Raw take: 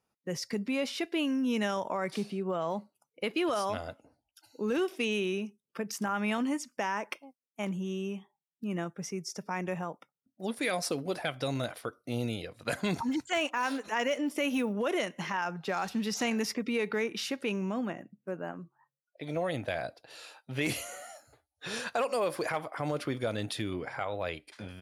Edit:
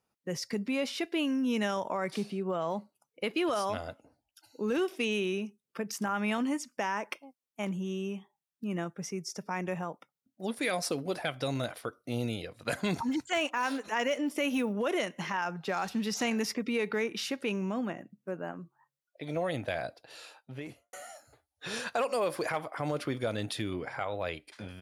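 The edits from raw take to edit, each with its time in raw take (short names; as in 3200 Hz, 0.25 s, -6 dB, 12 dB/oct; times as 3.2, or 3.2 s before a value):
20.18–20.93 studio fade out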